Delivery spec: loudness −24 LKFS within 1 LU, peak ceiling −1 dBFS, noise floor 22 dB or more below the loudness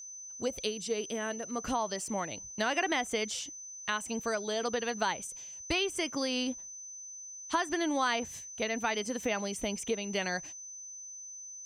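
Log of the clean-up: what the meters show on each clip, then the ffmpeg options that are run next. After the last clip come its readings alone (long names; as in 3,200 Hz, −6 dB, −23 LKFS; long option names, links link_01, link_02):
interfering tone 6,100 Hz; level of the tone −43 dBFS; integrated loudness −34.0 LKFS; sample peak −16.0 dBFS; target loudness −24.0 LKFS
→ -af "bandreject=frequency=6100:width=30"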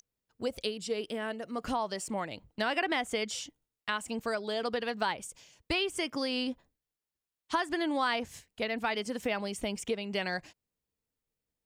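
interfering tone none found; integrated loudness −33.5 LKFS; sample peak −16.0 dBFS; target loudness −24.0 LKFS
→ -af "volume=9.5dB"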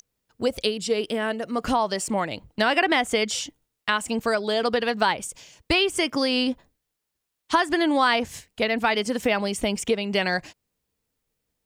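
integrated loudness −24.0 LKFS; sample peak −6.5 dBFS; background noise floor −81 dBFS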